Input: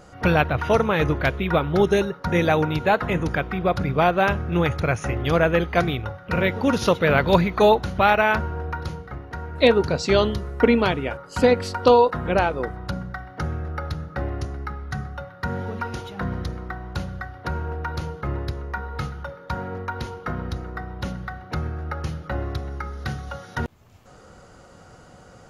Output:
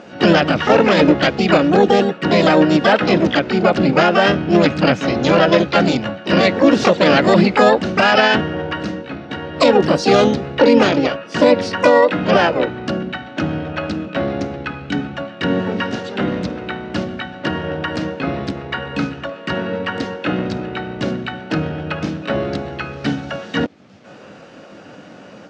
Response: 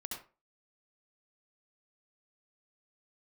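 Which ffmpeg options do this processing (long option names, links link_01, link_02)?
-filter_complex "[0:a]asplit=3[link_01][link_02][link_03];[link_02]asetrate=52444,aresample=44100,atempo=0.840896,volume=-3dB[link_04];[link_03]asetrate=88200,aresample=44100,atempo=0.5,volume=-2dB[link_05];[link_01][link_04][link_05]amix=inputs=3:normalize=0,highpass=170,equalizer=frequency=200:width_type=q:width=4:gain=5,equalizer=frequency=290:width_type=q:width=4:gain=7,equalizer=frequency=560:width_type=q:width=4:gain=5,equalizer=frequency=1000:width_type=q:width=4:gain=-6,lowpass=frequency=5800:width=0.5412,lowpass=frequency=5800:width=1.3066,alimiter=level_in=5.5dB:limit=-1dB:release=50:level=0:latency=1,volume=-1dB"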